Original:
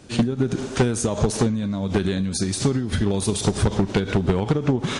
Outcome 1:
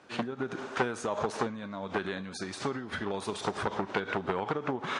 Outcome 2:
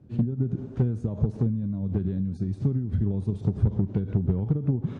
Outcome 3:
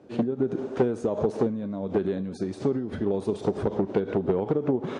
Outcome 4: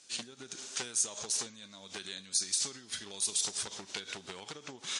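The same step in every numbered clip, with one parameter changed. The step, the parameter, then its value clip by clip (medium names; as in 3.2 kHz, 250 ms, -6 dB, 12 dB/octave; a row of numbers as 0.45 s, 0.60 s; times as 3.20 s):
band-pass filter, frequency: 1.2 kHz, 110 Hz, 460 Hz, 6.6 kHz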